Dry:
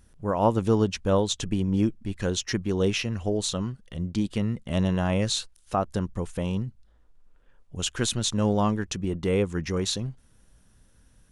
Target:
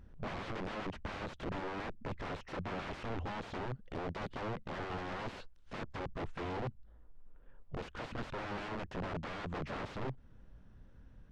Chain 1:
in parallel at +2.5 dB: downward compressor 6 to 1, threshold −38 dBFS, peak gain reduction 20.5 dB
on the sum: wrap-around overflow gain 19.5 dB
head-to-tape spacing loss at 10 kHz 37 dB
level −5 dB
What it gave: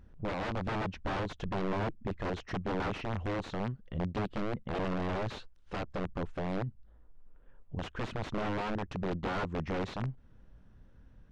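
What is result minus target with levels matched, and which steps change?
wrap-around overflow: distortion −14 dB
change: wrap-around overflow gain 26 dB

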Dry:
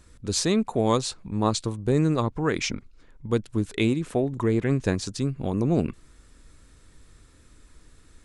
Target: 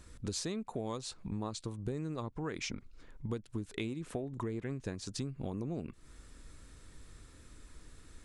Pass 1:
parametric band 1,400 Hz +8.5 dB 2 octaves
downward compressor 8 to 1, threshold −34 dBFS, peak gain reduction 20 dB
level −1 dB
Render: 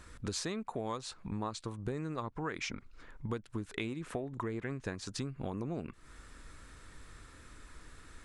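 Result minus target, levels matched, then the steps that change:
1,000 Hz band +4.0 dB
remove: parametric band 1,400 Hz +8.5 dB 2 octaves

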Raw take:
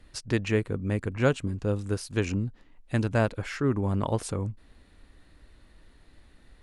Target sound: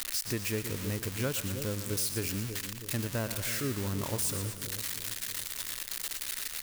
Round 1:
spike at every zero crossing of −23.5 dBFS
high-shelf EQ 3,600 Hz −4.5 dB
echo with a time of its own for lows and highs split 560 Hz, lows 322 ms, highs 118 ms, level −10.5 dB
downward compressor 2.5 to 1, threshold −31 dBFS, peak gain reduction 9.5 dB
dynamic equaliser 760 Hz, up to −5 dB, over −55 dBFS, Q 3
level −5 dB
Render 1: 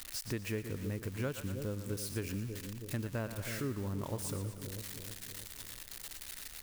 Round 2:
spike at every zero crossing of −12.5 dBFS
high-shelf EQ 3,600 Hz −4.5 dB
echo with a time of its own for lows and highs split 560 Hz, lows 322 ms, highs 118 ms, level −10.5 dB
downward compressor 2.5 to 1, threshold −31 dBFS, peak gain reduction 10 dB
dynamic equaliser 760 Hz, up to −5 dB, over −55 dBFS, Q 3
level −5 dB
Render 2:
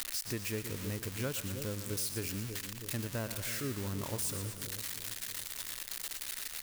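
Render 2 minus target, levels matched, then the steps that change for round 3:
downward compressor: peak gain reduction +4 dB
change: downward compressor 2.5 to 1, threshold −24 dBFS, peak gain reduction 5.5 dB

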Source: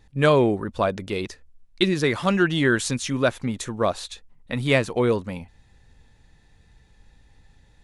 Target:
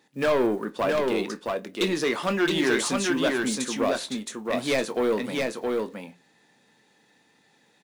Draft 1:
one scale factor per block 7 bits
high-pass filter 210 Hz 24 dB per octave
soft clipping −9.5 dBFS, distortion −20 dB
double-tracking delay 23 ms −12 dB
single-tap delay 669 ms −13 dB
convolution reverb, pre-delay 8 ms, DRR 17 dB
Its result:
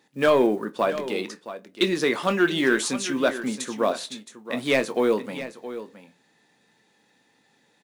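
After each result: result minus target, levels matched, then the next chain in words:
soft clipping: distortion −10 dB; echo-to-direct −8.5 dB
one scale factor per block 7 bits
high-pass filter 210 Hz 24 dB per octave
soft clipping −18.5 dBFS, distortion −10 dB
double-tracking delay 23 ms −12 dB
single-tap delay 669 ms −13 dB
convolution reverb, pre-delay 8 ms, DRR 17 dB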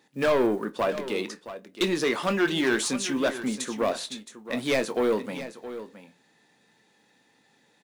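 echo-to-direct −8.5 dB
one scale factor per block 7 bits
high-pass filter 210 Hz 24 dB per octave
soft clipping −18.5 dBFS, distortion −10 dB
double-tracking delay 23 ms −12 dB
single-tap delay 669 ms −3 dB
convolution reverb, pre-delay 8 ms, DRR 17 dB

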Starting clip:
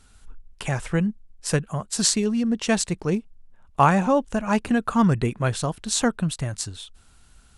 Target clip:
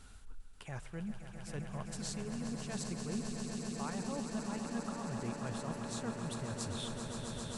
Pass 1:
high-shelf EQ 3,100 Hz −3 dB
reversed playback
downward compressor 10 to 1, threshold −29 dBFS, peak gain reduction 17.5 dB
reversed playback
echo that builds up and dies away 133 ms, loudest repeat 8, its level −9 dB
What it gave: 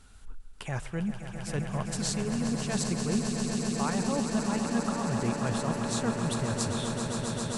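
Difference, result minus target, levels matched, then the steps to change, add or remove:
downward compressor: peak gain reduction −10.5 dB
change: downward compressor 10 to 1, threshold −40.5 dBFS, peak gain reduction 28 dB

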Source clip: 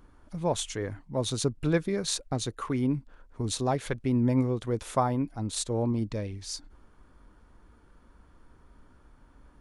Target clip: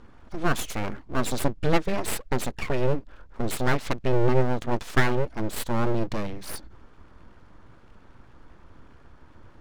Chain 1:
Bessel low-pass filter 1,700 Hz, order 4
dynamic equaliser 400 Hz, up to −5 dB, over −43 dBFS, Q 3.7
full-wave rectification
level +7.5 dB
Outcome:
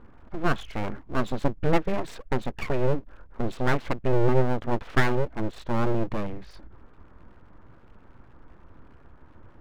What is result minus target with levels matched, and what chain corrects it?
4,000 Hz band −4.0 dB
Bessel low-pass filter 5,400 Hz, order 4
dynamic equaliser 400 Hz, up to −5 dB, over −43 dBFS, Q 3.7
full-wave rectification
level +7.5 dB

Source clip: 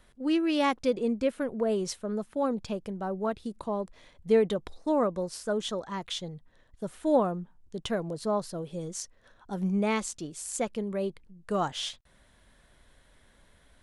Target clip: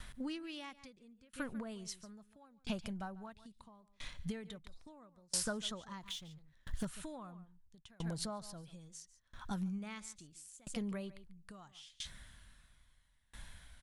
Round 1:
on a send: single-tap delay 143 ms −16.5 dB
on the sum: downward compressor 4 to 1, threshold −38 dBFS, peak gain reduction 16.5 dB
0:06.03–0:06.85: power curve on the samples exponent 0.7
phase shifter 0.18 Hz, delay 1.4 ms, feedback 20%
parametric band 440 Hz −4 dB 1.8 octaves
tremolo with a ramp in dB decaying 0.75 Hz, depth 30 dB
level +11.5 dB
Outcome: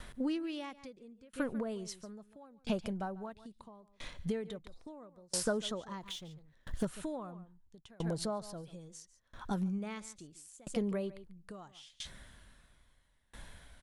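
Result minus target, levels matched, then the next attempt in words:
500 Hz band +5.0 dB
on a send: single-tap delay 143 ms −16.5 dB
on the sum: downward compressor 4 to 1, threshold −38 dBFS, peak gain reduction 16.5 dB
0:06.03–0:06.85: power curve on the samples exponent 0.7
phase shifter 0.18 Hz, delay 1.4 ms, feedback 20%
parametric band 440 Hz −15 dB 1.8 octaves
tremolo with a ramp in dB decaying 0.75 Hz, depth 30 dB
level +11.5 dB

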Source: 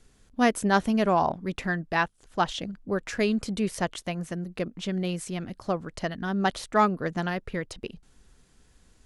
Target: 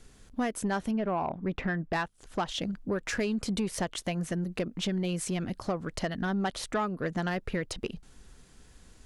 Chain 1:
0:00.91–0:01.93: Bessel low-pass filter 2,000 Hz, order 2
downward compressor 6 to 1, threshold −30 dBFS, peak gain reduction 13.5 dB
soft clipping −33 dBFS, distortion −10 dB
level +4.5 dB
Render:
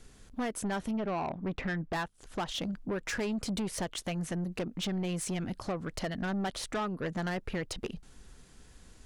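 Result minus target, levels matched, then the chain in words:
soft clipping: distortion +8 dB
0:00.91–0:01.93: Bessel low-pass filter 2,000 Hz, order 2
downward compressor 6 to 1, threshold −30 dBFS, peak gain reduction 13.5 dB
soft clipping −25.5 dBFS, distortion −19 dB
level +4.5 dB

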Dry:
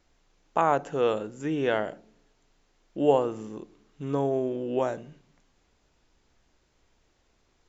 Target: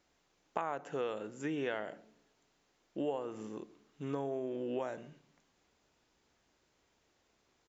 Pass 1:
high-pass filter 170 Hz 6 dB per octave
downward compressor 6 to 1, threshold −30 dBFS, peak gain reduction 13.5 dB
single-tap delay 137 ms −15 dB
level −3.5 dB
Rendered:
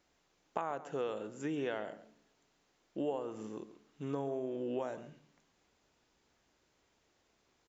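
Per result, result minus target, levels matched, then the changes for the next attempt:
echo-to-direct +9 dB; 2,000 Hz band −2.5 dB
change: single-tap delay 137 ms −24 dB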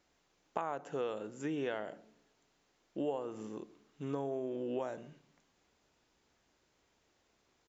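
2,000 Hz band −2.5 dB
add after downward compressor: dynamic equaliser 2,000 Hz, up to +4 dB, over −54 dBFS, Q 1.3

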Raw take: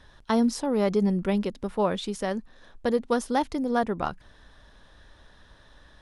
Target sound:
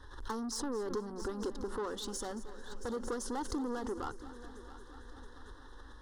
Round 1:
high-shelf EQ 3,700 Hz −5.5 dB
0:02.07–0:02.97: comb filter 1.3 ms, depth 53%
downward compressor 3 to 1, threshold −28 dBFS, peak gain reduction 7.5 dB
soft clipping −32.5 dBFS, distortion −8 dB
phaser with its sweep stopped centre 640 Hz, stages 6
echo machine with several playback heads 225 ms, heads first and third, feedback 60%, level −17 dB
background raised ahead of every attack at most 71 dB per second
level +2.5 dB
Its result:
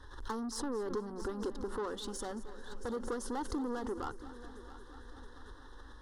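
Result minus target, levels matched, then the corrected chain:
8,000 Hz band −3.0 dB
high-shelf EQ 3,700 Hz −5.5 dB
0:02.07–0:02.97: comb filter 1.3 ms, depth 53%
downward compressor 3 to 1, threshold −28 dBFS, peak gain reduction 7.5 dB
dynamic equaliser 6,400 Hz, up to +6 dB, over −58 dBFS, Q 1.1
soft clipping −32.5 dBFS, distortion −8 dB
phaser with its sweep stopped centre 640 Hz, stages 6
echo machine with several playback heads 225 ms, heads first and third, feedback 60%, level −17 dB
background raised ahead of every attack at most 71 dB per second
level +2.5 dB

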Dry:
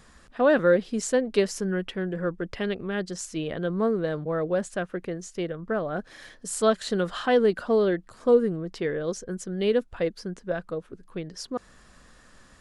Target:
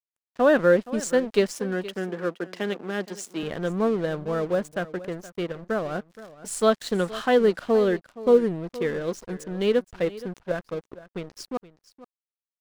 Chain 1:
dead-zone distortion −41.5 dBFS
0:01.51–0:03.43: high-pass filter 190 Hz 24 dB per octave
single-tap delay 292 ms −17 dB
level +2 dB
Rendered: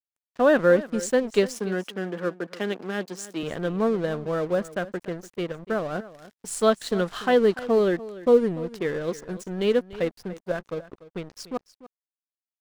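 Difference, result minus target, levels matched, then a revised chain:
echo 179 ms early
dead-zone distortion −41.5 dBFS
0:01.51–0:03.43: high-pass filter 190 Hz 24 dB per octave
single-tap delay 471 ms −17 dB
level +2 dB

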